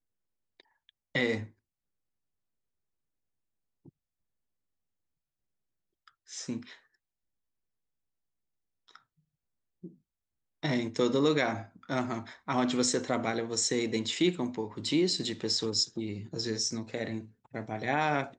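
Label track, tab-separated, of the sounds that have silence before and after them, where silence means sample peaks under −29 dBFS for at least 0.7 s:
1.150000	1.380000	sound
6.390000	6.570000	sound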